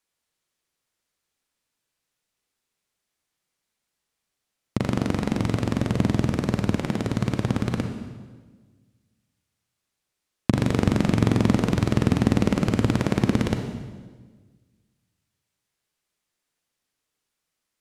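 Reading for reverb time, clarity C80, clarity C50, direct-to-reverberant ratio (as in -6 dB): 1.4 s, 8.0 dB, 6.0 dB, 5.0 dB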